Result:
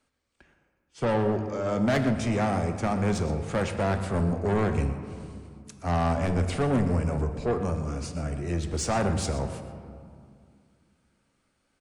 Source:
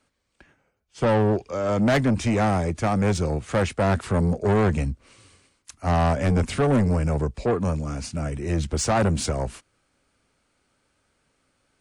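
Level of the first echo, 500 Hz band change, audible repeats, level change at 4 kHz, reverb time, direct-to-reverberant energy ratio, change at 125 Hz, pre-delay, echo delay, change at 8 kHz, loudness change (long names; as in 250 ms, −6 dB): −15.0 dB, −4.0 dB, 1, −4.5 dB, 2.3 s, 6.5 dB, −4.0 dB, 3 ms, 123 ms, −4.5 dB, −4.0 dB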